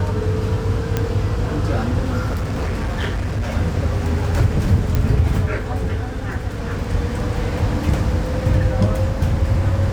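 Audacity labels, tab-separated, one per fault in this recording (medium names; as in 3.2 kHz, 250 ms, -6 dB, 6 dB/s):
0.970000	0.970000	pop -6 dBFS
2.260000	3.490000	clipped -18 dBFS
4.950000	4.950000	pop -7 dBFS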